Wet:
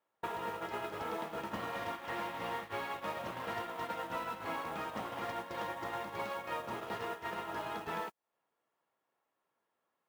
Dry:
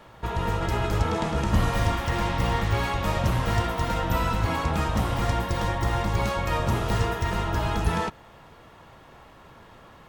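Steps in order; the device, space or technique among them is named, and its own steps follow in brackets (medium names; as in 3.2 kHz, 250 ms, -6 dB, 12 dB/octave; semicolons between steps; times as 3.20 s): baby monitor (band-pass 320–3400 Hz; compression 6:1, threshold -42 dBFS, peak gain reduction 16.5 dB; white noise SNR 20 dB; gate -43 dBFS, range -39 dB); trim +6 dB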